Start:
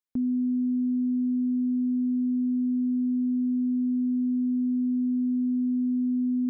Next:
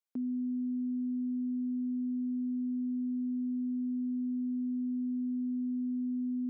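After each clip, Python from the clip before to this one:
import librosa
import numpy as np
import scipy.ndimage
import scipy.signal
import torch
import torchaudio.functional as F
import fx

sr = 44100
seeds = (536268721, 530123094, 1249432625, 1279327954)

y = scipy.signal.sosfilt(scipy.signal.butter(2, 290.0, 'highpass', fs=sr, output='sos'), x)
y = y * librosa.db_to_amplitude(-3.5)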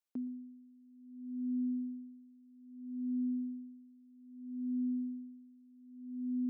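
y = x + 10.0 ** (-17.0 / 20.0) * np.pad(x, (int(119 * sr / 1000.0), 0))[:len(x)]
y = y * 10.0 ** (-27 * (0.5 - 0.5 * np.cos(2.0 * np.pi * 0.62 * np.arange(len(y)) / sr)) / 20.0)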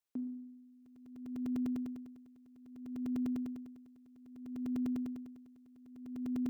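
y = fx.comb_fb(x, sr, f0_hz=140.0, decay_s=0.86, harmonics='all', damping=0.0, mix_pct=70)
y = fx.buffer_crackle(y, sr, first_s=0.86, period_s=0.1, block=128, kind='zero')
y = y * librosa.db_to_amplitude(9.5)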